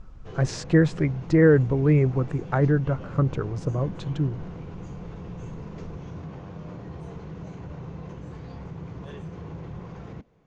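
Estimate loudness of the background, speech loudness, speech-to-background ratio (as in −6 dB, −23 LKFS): −39.0 LKFS, −23.0 LKFS, 16.0 dB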